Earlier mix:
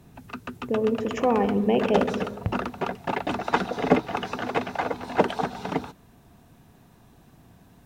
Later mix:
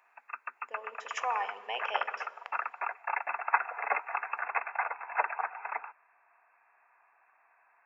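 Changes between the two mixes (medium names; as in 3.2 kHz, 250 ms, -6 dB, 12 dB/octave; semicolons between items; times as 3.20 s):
background: add brick-wall FIR low-pass 2.7 kHz; master: add high-pass 910 Hz 24 dB/octave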